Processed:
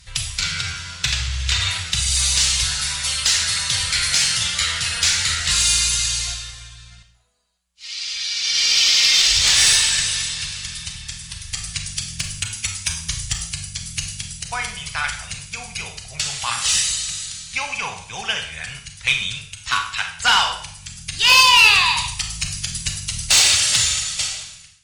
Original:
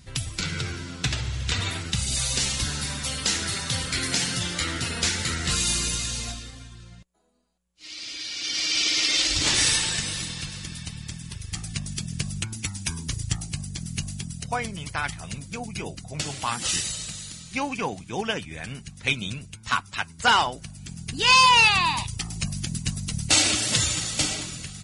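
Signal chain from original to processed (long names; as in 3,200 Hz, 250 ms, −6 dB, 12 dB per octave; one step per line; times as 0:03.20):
fade-out on the ending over 1.23 s
guitar amp tone stack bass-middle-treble 10-0-10
harmonic generator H 5 −8 dB, 7 −23 dB, 8 −30 dB, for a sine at −7.5 dBFS
high-shelf EQ 9,000 Hz −7 dB
convolution reverb RT60 0.55 s, pre-delay 28 ms, DRR 4 dB
level +2.5 dB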